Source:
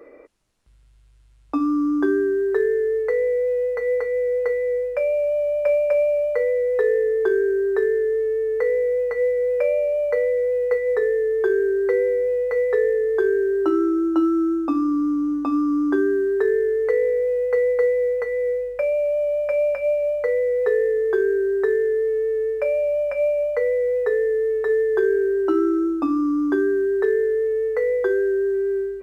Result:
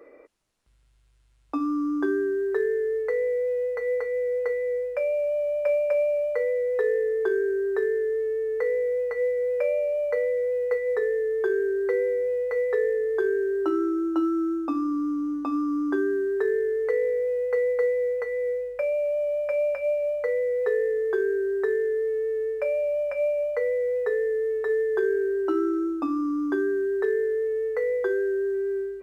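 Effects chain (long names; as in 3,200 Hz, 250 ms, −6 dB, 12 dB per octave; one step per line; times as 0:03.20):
low-shelf EQ 230 Hz −5.5 dB
level −3.5 dB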